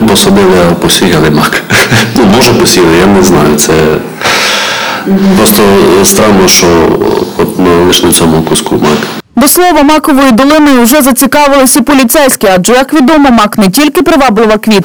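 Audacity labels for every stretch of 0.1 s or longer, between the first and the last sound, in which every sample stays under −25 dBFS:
9.200000	9.360000	silence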